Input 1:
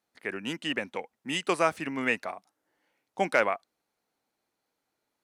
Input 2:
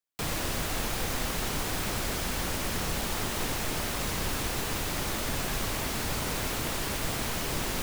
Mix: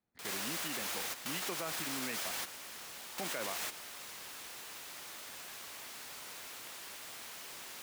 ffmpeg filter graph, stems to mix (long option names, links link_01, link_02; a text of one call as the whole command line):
ffmpeg -i stem1.wav -i stem2.wav -filter_complex "[0:a]bass=frequency=250:gain=14,treble=frequency=4000:gain=-9,volume=-8dB,asplit=2[link_01][link_02];[1:a]highpass=frequency=1300:poles=1,volume=0.5dB[link_03];[link_02]apad=whole_len=345227[link_04];[link_03][link_04]sidechaingate=range=-13dB:threshold=-54dB:ratio=16:detection=peak[link_05];[link_01][link_05]amix=inputs=2:normalize=0,acrossover=split=290[link_06][link_07];[link_06]acompressor=threshold=-50dB:ratio=2[link_08];[link_08][link_07]amix=inputs=2:normalize=0,alimiter=level_in=4.5dB:limit=-24dB:level=0:latency=1:release=72,volume=-4.5dB" out.wav